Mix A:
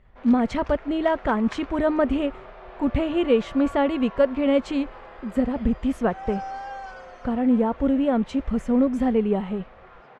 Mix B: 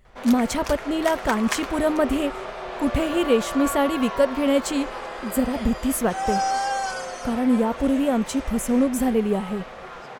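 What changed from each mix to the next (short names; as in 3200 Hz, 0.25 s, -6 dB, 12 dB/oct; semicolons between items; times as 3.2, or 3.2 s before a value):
background +10.0 dB; master: remove LPF 2700 Hz 12 dB/oct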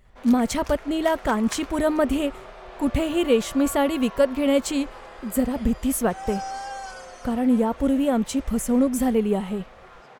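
background -9.0 dB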